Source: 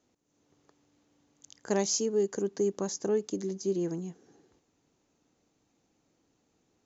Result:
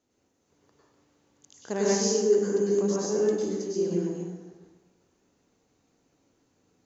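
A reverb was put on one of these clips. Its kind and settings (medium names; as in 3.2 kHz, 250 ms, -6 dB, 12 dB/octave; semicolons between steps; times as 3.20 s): plate-style reverb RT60 1.2 s, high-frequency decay 0.65×, pre-delay 90 ms, DRR -7 dB; trim -3.5 dB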